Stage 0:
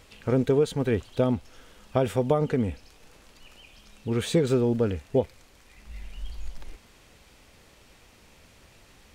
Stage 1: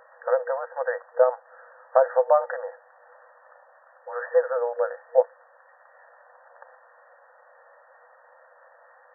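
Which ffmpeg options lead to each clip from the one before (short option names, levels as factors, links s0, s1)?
-af "afftfilt=real='re*between(b*sr/4096,480,1900)':imag='im*between(b*sr/4096,480,1900)':win_size=4096:overlap=0.75,volume=2.51"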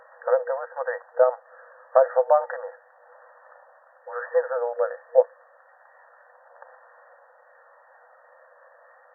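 -af "aphaser=in_gain=1:out_gain=1:delay=1.8:decay=0.22:speed=0.29:type=sinusoidal"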